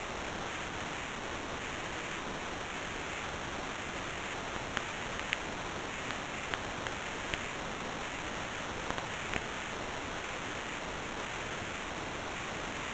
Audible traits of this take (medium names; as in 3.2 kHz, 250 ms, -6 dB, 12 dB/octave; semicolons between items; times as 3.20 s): a quantiser's noise floor 6-bit, dither triangular; phasing stages 6, 0.93 Hz, lowest notch 800–2600 Hz; aliases and images of a low sample rate 4.8 kHz, jitter 0%; G.722